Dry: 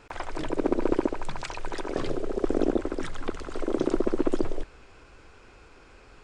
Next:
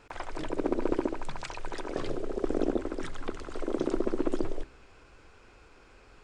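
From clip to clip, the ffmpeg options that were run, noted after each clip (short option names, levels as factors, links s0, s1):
-af "bandreject=f=65.39:t=h:w=4,bandreject=f=130.78:t=h:w=4,bandreject=f=196.17:t=h:w=4,bandreject=f=261.56:t=h:w=4,bandreject=f=326.95:t=h:w=4,bandreject=f=392.34:t=h:w=4,volume=0.668"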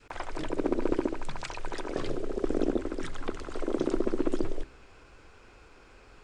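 -af "adynamicequalizer=threshold=0.00794:dfrequency=790:dqfactor=0.98:tfrequency=790:tqfactor=0.98:attack=5:release=100:ratio=0.375:range=2:mode=cutabove:tftype=bell,volume=1.19"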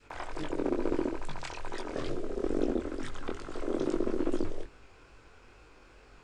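-af "flanger=delay=19.5:depth=5.2:speed=2.3,volume=1.12"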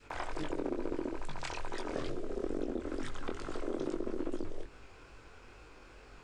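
-af "acompressor=threshold=0.0224:ratio=6,volume=1.19"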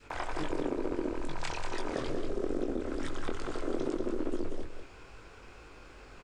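-af "aecho=1:1:187:0.473,volume=1.33"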